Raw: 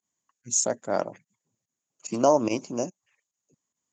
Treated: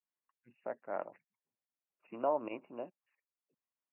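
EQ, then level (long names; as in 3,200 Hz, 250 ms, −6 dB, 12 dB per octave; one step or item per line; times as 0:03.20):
high-pass filter 1,100 Hz 6 dB per octave
linear-phase brick-wall low-pass 2,900 Hz
high-shelf EQ 2,300 Hz −12 dB
−5.0 dB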